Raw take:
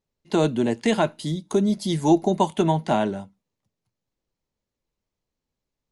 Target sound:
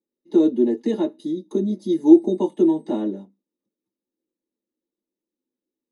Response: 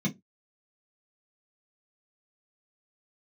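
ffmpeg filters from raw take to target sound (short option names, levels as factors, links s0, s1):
-filter_complex "[0:a]asettb=1/sr,asplit=3[s0][s1][s2];[s0]atrim=end=2.134[s3];[s1]atrim=start=2.13:end=3.01,asetpts=PTS-STARTPTS,afade=t=in:d=0.004:c=qsin,afade=t=out:st=0.876:d=0.004:c=qsin,aeval=exprs='val(0)+0.00398*sin(2*PI*8400*n/s)':c=same[s4];[s2]atrim=start=3.006[s5];[s3][s4]acrossfade=d=0.004:c1=hsin:c2=qsin[s6];[s6][s5]acrossfade=d=0.004:c1=qsin:c2=hsin[s7];[1:a]atrim=start_sample=2205,atrim=end_sample=3528,asetrate=74970,aresample=44100[s8];[s7][s8]afir=irnorm=-1:irlink=0,volume=0.2"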